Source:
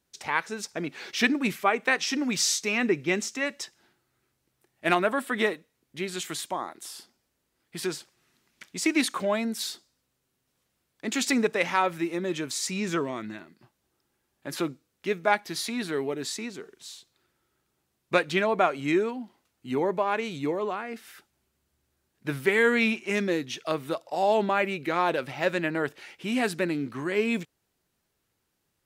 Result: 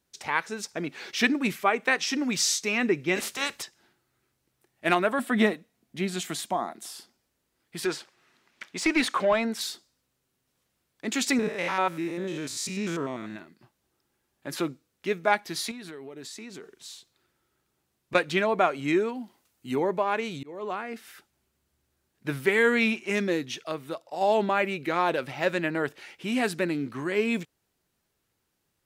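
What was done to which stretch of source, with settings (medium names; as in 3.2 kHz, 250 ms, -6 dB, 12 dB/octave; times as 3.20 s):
3.15–3.61 s: spectral peaks clipped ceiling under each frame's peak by 25 dB
5.19–6.93 s: small resonant body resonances 210/690 Hz, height 10 dB
7.85–9.61 s: overdrive pedal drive 14 dB, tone 2 kHz, clips at -11.5 dBFS
11.39–13.36 s: spectrogram pixelated in time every 100 ms
15.71–18.15 s: compression 16:1, threshold -37 dBFS
19.15–19.76 s: treble shelf 5.8 kHz +8.5 dB
20.27–20.70 s: slow attack 367 ms
23.64–24.21 s: gain -4.5 dB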